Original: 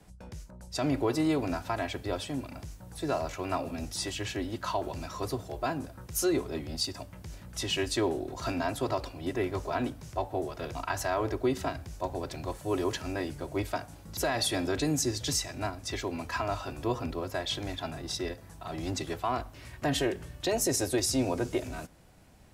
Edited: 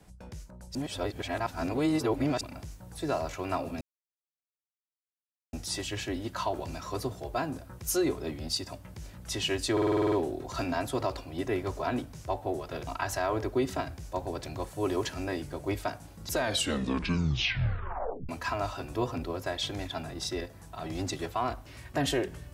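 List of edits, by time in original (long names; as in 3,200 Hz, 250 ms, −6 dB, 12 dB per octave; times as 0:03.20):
0:00.75–0:02.41: reverse
0:03.81: splice in silence 1.72 s
0:08.00: stutter 0.05 s, 9 plays
0:14.20: tape stop 1.97 s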